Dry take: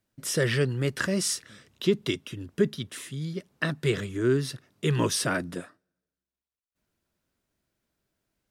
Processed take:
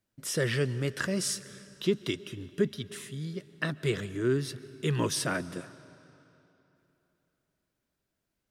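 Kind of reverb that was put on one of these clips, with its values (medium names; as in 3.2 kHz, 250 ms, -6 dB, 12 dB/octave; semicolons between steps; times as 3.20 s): algorithmic reverb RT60 3.2 s, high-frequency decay 0.85×, pre-delay 95 ms, DRR 17.5 dB; trim -3.5 dB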